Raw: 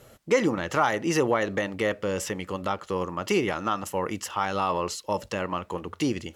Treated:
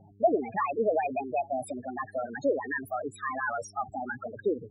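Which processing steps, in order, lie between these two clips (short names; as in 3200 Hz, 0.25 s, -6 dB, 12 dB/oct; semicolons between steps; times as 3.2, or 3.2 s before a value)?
loudest bins only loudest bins 4; wide varispeed 1.35×; buzz 100 Hz, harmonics 4, -58 dBFS -6 dB/oct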